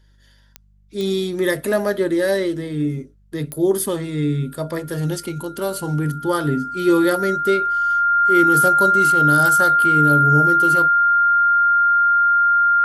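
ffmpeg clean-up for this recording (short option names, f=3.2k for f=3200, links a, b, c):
-af "adeclick=t=4,bandreject=f=49.7:t=h:w=4,bandreject=f=99.4:t=h:w=4,bandreject=f=149.1:t=h:w=4,bandreject=f=198.8:t=h:w=4,bandreject=f=1.4k:w=30"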